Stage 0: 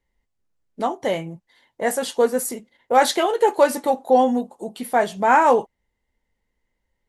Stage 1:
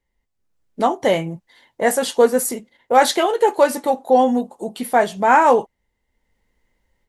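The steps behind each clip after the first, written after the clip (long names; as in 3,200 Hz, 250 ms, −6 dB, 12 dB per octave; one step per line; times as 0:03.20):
automatic gain control gain up to 9 dB
level −1 dB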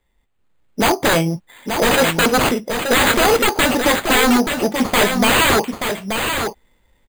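decimation without filtering 8×
wave folding −17 dBFS
single-tap delay 880 ms −6.5 dB
level +8 dB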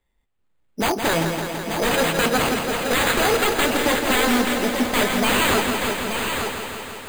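feedback echo at a low word length 166 ms, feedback 80%, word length 7 bits, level −6.5 dB
level −6 dB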